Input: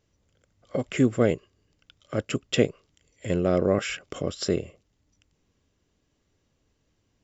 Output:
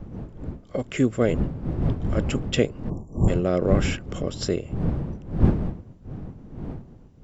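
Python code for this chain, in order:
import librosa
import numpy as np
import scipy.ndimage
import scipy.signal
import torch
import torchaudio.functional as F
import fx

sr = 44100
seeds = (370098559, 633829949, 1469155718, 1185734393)

y = fx.dmg_wind(x, sr, seeds[0], corner_hz=180.0, level_db=-27.0)
y = fx.spec_erase(y, sr, start_s=2.9, length_s=0.38, low_hz=1200.0, high_hz=5300.0)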